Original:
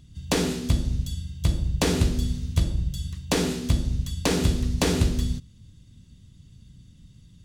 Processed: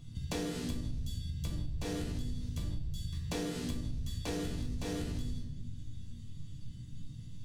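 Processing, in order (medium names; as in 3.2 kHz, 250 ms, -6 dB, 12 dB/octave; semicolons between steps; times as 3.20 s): peak limiter -20.5 dBFS, peak gain reduction 11 dB; bass shelf 250 Hz +4 dB; chord resonator G2 minor, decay 0.3 s; simulated room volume 190 m³, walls mixed, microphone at 0.75 m; compression 6:1, threshold -45 dBFS, peak gain reduction 15 dB; trim +11.5 dB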